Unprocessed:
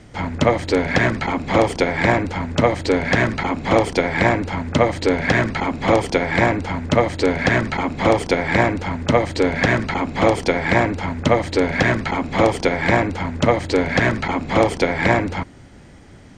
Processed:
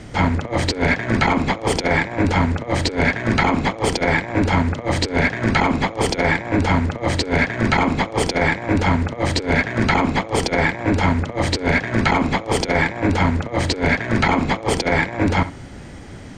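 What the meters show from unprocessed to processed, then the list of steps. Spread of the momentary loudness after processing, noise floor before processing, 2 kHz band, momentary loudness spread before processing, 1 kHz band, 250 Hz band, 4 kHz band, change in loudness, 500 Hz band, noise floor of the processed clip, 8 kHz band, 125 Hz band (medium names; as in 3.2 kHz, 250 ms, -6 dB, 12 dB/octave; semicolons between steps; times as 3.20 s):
4 LU, -43 dBFS, +0.5 dB, 5 LU, 0.0 dB, +0.5 dB, +2.5 dB, 0.0 dB, -4.0 dB, -35 dBFS, +4.0 dB, +2.0 dB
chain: on a send: flutter echo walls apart 11.6 m, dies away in 0.26 s; on the sum: compressor with a negative ratio -22 dBFS, ratio -0.5; trim +3.5 dB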